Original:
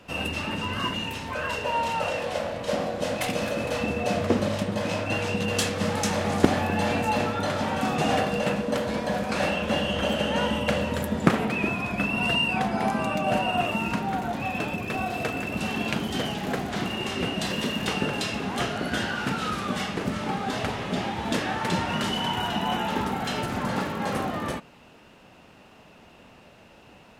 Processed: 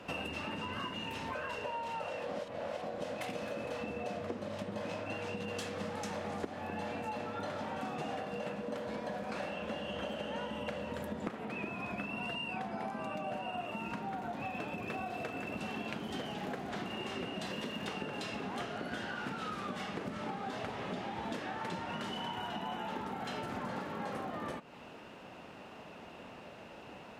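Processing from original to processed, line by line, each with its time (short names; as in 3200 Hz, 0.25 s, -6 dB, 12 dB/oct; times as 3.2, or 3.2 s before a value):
2.29–2.83 reverse
whole clip: HPF 540 Hz 6 dB/oct; tilt -2.5 dB/oct; compressor 10:1, threshold -40 dBFS; gain +3.5 dB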